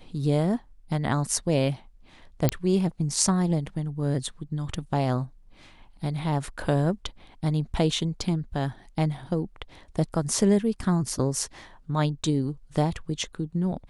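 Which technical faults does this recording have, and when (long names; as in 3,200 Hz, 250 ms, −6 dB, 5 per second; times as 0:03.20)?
0:02.49: click −7 dBFS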